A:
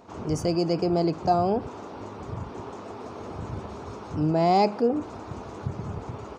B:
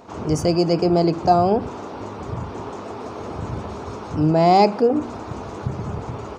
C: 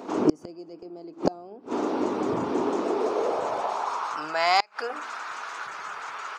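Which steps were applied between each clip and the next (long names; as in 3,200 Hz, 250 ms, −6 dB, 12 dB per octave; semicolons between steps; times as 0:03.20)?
hum removal 47.54 Hz, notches 8; level +6.5 dB
high-pass filter sweep 290 Hz → 1,500 Hz, 0:02.77–0:04.37; gate with flip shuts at −10 dBFS, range −31 dB; level +2.5 dB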